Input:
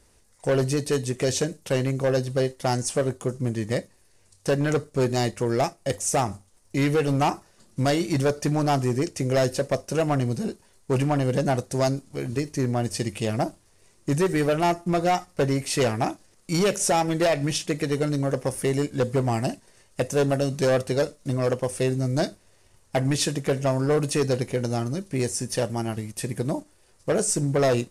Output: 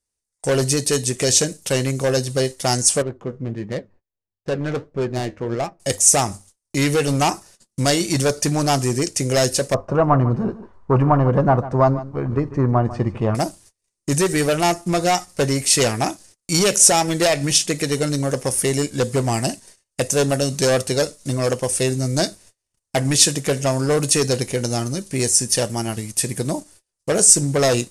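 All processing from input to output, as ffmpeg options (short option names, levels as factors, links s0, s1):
-filter_complex "[0:a]asettb=1/sr,asplit=3[s0][s1][s2];[s0]atrim=end=3.024[s3];[s1]atrim=start=3.02:end=5.8,asetpts=PTS-STARTPTS,afade=t=in:d=0.004:c=qsin,afade=t=out:st=2.776:d=0.004:c=qsin,aemphasis=mode=reproduction:type=75fm,adynamicsmooth=sensitivity=3:basefreq=1500,flanger=delay=4.9:depth=7.7:regen=66:speed=1.5:shape=sinusoidal[s4];[s2]atrim=start=5.796[s5];[s3][s4]acrossfade=d=0.004:c1=hsin:c2=qsin[s6];[s6][s5]acrossfade=d=0.004:c1=qsin:c2=hsin,asettb=1/sr,asplit=3[s7][s8][s9];[s7]atrim=end=9.744[s10];[s8]atrim=start=9.74:end=13.35,asetpts=PTS-STARTPTS,afade=t=in:d=0.004:c=qsin,afade=t=out:st=3.606:d=0.004:c=qsin,lowpass=f=1100:t=q:w=3.6,lowshelf=f=120:g=10,aecho=1:1:147:0.168,atrim=end_sample=159201[s11];[s9]atrim=start=13.346[s12];[s10][s11]acrossfade=d=0.004:c1=hsin:c2=qsin[s13];[s13][s12]acrossfade=d=0.004:c1=qsin:c2=hsin,agate=range=0.0282:threshold=0.00282:ratio=16:detection=peak,equalizer=f=8300:w=0.42:g=11.5,volume=1.41"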